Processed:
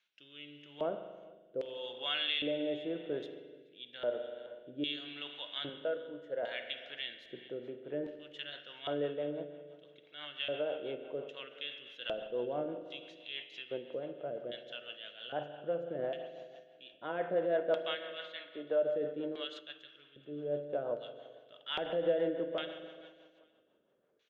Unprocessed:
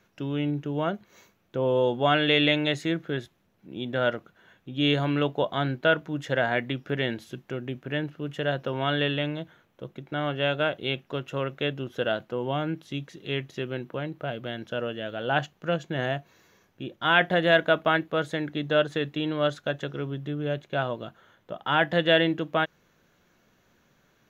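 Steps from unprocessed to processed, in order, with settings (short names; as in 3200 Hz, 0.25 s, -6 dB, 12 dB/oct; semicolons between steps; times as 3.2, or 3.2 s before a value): 17.95–18.83 three-band isolator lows -13 dB, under 300 Hz, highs -23 dB, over 4800 Hz; LFO band-pass square 0.62 Hz 510–3300 Hz; 5.69–6.43 low shelf 440 Hz -11.5 dB; on a send: feedback echo 0.429 s, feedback 25%, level -22 dB; on the sum: spring tank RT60 1.8 s, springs 41 ms, chirp 40 ms, DRR 7.5 dB; in parallel at +1 dB: limiter -24 dBFS, peak gain reduction 10 dB; on the sum: rotary speaker horn 0.85 Hz, later 6 Hz, at 7.01; resonator 300 Hz, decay 0.85 s, mix 60%; 19.59–20.47 upward expander 1.5:1, over -48 dBFS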